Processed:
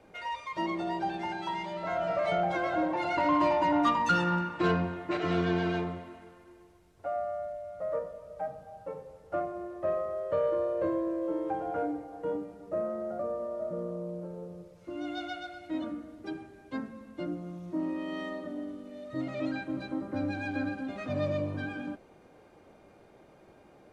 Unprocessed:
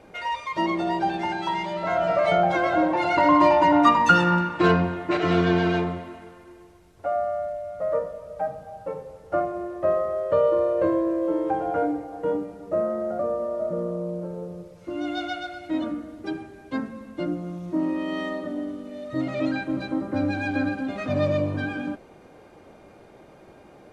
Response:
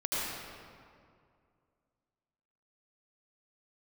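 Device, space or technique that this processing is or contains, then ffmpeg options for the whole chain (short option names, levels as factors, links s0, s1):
one-band saturation: -filter_complex "[0:a]acrossover=split=330|3500[s0][s1][s2];[s1]asoftclip=type=tanh:threshold=0.266[s3];[s0][s3][s2]amix=inputs=3:normalize=0,volume=0.422"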